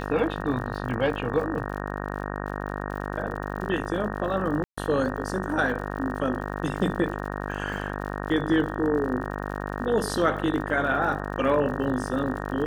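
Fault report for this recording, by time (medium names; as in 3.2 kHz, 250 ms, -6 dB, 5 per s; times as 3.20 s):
buzz 50 Hz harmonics 37 -32 dBFS
crackle 66 per s -36 dBFS
4.64–4.78 s: dropout 135 ms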